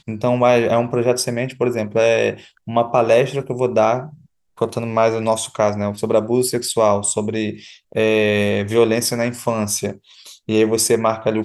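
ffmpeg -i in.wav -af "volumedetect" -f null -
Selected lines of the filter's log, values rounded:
mean_volume: -18.4 dB
max_volume: -1.3 dB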